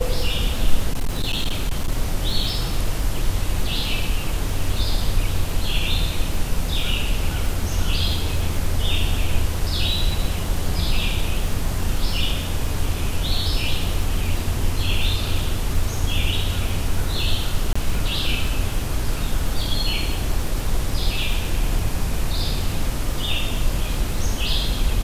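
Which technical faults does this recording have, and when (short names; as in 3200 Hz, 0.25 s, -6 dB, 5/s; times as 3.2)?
crackle 48/s -27 dBFS
0.93–1.92 clipped -16.5 dBFS
17.73–17.75 gap 25 ms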